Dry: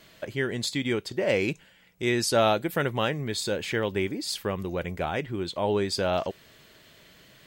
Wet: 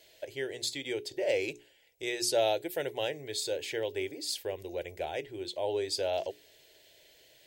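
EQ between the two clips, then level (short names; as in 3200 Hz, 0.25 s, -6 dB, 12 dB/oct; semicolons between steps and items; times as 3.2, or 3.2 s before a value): tone controls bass -8 dB, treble +1 dB; notches 60/120/180/240/300/360/420 Hz; fixed phaser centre 500 Hz, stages 4; -3.0 dB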